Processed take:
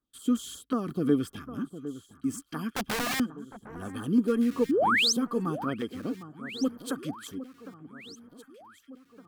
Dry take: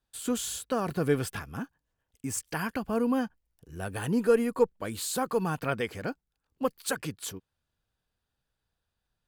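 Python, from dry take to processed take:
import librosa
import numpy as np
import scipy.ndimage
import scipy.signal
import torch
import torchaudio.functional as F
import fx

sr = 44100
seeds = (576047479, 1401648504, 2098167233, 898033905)

y = fx.filter_lfo_notch(x, sr, shape='saw_down', hz=5.5, low_hz=460.0, high_hz=3400.0, q=0.88)
y = fx.small_body(y, sr, hz=(270.0, 1200.0, 3200.0), ring_ms=25, db=16)
y = fx.overflow_wrap(y, sr, gain_db=17.0, at=(2.72, 3.2))
y = fx.spec_paint(y, sr, seeds[0], shape='rise', start_s=4.69, length_s=0.44, low_hz=240.0, high_hz=6600.0, level_db=-15.0)
y = fx.echo_alternate(y, sr, ms=757, hz=1500.0, feedback_pct=65, wet_db=-13.0)
y = y * 10.0 ** (-8.5 / 20.0)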